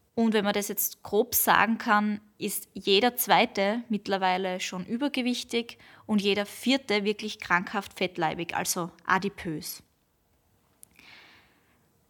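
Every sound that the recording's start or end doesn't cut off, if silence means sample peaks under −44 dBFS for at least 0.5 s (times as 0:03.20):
0:10.83–0:11.29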